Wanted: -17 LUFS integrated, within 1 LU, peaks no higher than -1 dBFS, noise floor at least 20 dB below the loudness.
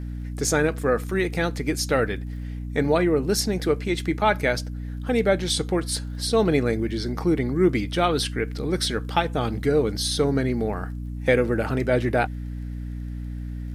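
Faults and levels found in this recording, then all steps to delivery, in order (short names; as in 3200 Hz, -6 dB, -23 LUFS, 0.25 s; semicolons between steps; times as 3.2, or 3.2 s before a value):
ticks 25/s; hum 60 Hz; harmonics up to 300 Hz; hum level -29 dBFS; loudness -24.0 LUFS; peak -6.0 dBFS; loudness target -17.0 LUFS
-> de-click; de-hum 60 Hz, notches 5; gain +7 dB; limiter -1 dBFS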